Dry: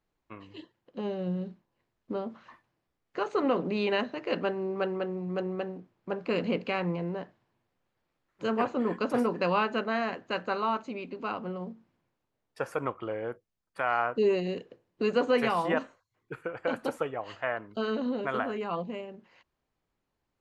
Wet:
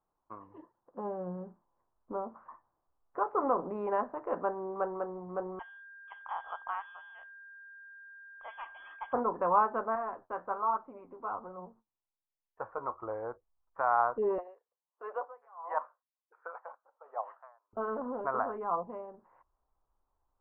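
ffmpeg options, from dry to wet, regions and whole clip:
ffmpeg -i in.wav -filter_complex "[0:a]asettb=1/sr,asplit=3[link_01][link_02][link_03];[link_01]atrim=end=5.594[link_04];[link_02]atrim=start=5.59:end=9.13,asetpts=PTS-STARTPTS,afade=type=in:duration=0.004:curve=qsin,afade=type=out:start_time=3.536:duration=0.004:curve=qsin,aeval=exprs='val(0)+0.01*sin(2*PI*2000*n/s)':channel_layout=same,lowpass=frequency=3100:width_type=q:width=0.5098,lowpass=frequency=3100:width_type=q:width=0.6013,lowpass=frequency=3100:width_type=q:width=0.9,lowpass=frequency=3100:width_type=q:width=2.563,afreqshift=-3600[link_05];[link_03]atrim=start=9.126[link_06];[link_04][link_05]acrossfade=duration=0.004:curve1=hsin:curve2=qsin[link_07];[link_07][link_06]acrossfade=duration=0.004:curve1=qsin:curve2=hsin,asettb=1/sr,asplit=3[link_08][link_09][link_10];[link_08]atrim=end=9.954[link_11];[link_09]atrim=start=9.95:end=13.03,asetpts=PTS-STARTPTS,afade=type=in:duration=0.004:curve=qsin,afade=type=out:start_time=3.076:duration=0.004:curve=qsin,agate=range=-20dB:threshold=-57dB:ratio=16:release=100:detection=peak,flanger=delay=4.9:depth=8:regen=51:speed=1.2:shape=triangular[link_12];[link_10]atrim=start=13.026[link_13];[link_11][link_12]acrossfade=duration=0.004:curve1=hsin:curve2=qsin[link_14];[link_14][link_13]acrossfade=duration=0.004:curve1=qsin:curve2=hsin,asettb=1/sr,asplit=3[link_15][link_16][link_17];[link_15]atrim=end=14.384[link_18];[link_16]atrim=start=14.38:end=17.73,asetpts=PTS-STARTPTS,afade=type=in:duration=0.004:curve=qsin,afade=type=out:start_time=3.346:duration=0.004:curve=qsin,highpass=frequency=550:width=0.5412,highpass=frequency=550:width=1.3066,aphaser=in_gain=1:out_gain=1:delay=1.1:decay=0.33:speed=1.1:type=triangular,aeval=exprs='val(0)*pow(10,-30*(0.5-0.5*cos(2*PI*1.4*n/s))/20)':channel_layout=same[link_19];[link_17]atrim=start=17.726[link_20];[link_18][link_19]acrossfade=duration=0.004:curve1=hsin:curve2=qsin[link_21];[link_21][link_20]acrossfade=duration=0.004:curve1=qsin:curve2=hsin,asubboost=boost=9:cutoff=52,lowpass=frequency=1300:width=0.5412,lowpass=frequency=1300:width=1.3066,equalizer=frequency=990:width=0.92:gain=13.5,volume=-8dB" out.wav

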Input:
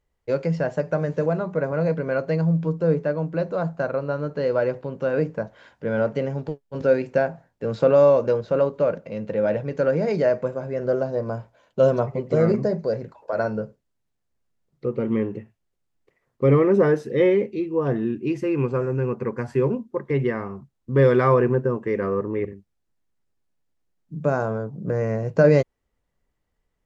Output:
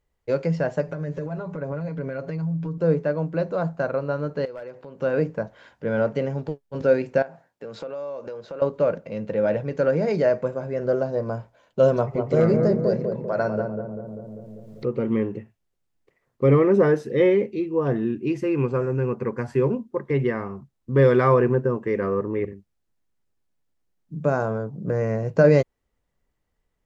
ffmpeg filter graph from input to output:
ffmpeg -i in.wav -filter_complex "[0:a]asettb=1/sr,asplit=3[link_01][link_02][link_03];[link_01]atrim=end=0.884[link_04];[link_02]atrim=start=0.88:end=2.78,asetpts=PTS-STARTPTS,afade=type=in:duration=0.004:curve=qsin,afade=type=out:start_time=1.896:duration=0.004:curve=qsin,acompressor=threshold=-31dB:ratio=4:attack=3.2:release=140:knee=1:detection=peak,lowshelf=frequency=140:gain=6,aecho=1:1:7.1:0.63,atrim=end_sample=83790[link_05];[link_03]atrim=start=2.776[link_06];[link_04][link_05]acrossfade=duration=0.004:curve1=hsin:curve2=qsin[link_07];[link_07][link_06]acrossfade=duration=0.004:curve1=qsin:curve2=hsin,asettb=1/sr,asplit=3[link_08][link_09][link_10];[link_08]atrim=end=4.454[link_11];[link_09]atrim=start=4.45:end=5,asetpts=PTS-STARTPTS,afade=type=in:duration=0.004:curve=qsin,afade=type=out:start_time=0.546:duration=0.004:curve=qsin,lowshelf=frequency=200:gain=-10.5,aeval=exprs='clip(val(0),-1,0.133)':channel_layout=same,acompressor=threshold=-40dB:ratio=2.5:attack=3.2:release=140:knee=1:detection=peak[link_12];[link_10]atrim=start=4.996[link_13];[link_11][link_12]acrossfade=duration=0.004:curve1=hsin:curve2=qsin[link_14];[link_14][link_13]acrossfade=duration=0.004:curve1=qsin:curve2=hsin,asettb=1/sr,asplit=3[link_15][link_16][link_17];[link_15]atrim=end=7.224[link_18];[link_16]atrim=start=7.22:end=8.62,asetpts=PTS-STARTPTS,afade=type=in:duration=0.004:curve=qsin,afade=type=out:start_time=1.396:duration=0.004:curve=qsin,highpass=frequency=390:poles=1,acompressor=threshold=-33dB:ratio=4:attack=3.2:release=140:knee=1:detection=peak[link_19];[link_17]atrim=start=8.616[link_20];[link_18][link_19]acrossfade=duration=0.004:curve1=hsin:curve2=qsin[link_21];[link_21][link_20]acrossfade=duration=0.004:curve1=qsin:curve2=hsin,asettb=1/sr,asplit=3[link_22][link_23][link_24];[link_22]atrim=end=11.964[link_25];[link_23]atrim=start=11.96:end=15.01,asetpts=PTS-STARTPTS,afade=type=in:duration=0.004:curve=qsin,afade=type=out:start_time=3.046:duration=0.004:curve=qsin,asplit=2[link_26][link_27];[link_27]adelay=197,lowpass=frequency=840:poles=1,volume=-3.5dB,asplit=2[link_28][link_29];[link_29]adelay=197,lowpass=frequency=840:poles=1,volume=0.52,asplit=2[link_30][link_31];[link_31]adelay=197,lowpass=frequency=840:poles=1,volume=0.52,asplit=2[link_32][link_33];[link_33]adelay=197,lowpass=frequency=840:poles=1,volume=0.52,asplit=2[link_34][link_35];[link_35]adelay=197,lowpass=frequency=840:poles=1,volume=0.52,asplit=2[link_36][link_37];[link_37]adelay=197,lowpass=frequency=840:poles=1,volume=0.52,asplit=2[link_38][link_39];[link_39]adelay=197,lowpass=frequency=840:poles=1,volume=0.52[link_40];[link_26][link_28][link_30][link_32][link_34][link_36][link_38][link_40]amix=inputs=8:normalize=0,atrim=end_sample=134505,acompressor=mode=upward:threshold=-26dB:ratio=2.5:attack=3.2:release=140:knee=2.83:detection=peak,asoftclip=type=hard:threshold=-9.5dB[link_41];[link_24]atrim=start=15.006[link_42];[link_25][link_41]acrossfade=duration=0.004:curve1=hsin:curve2=qsin[link_43];[link_43][link_42]acrossfade=duration=0.004:curve1=qsin:curve2=hsin" out.wav

